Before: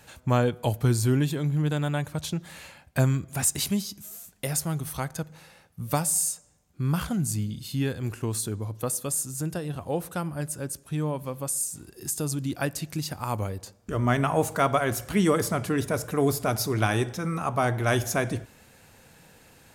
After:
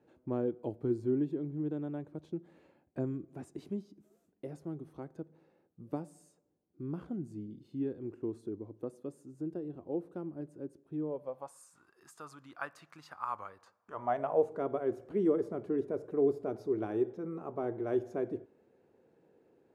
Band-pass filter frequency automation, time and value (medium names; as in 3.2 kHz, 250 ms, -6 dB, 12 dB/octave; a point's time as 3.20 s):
band-pass filter, Q 3.6
11.01 s 340 Hz
11.63 s 1.2 kHz
13.77 s 1.2 kHz
14.57 s 380 Hz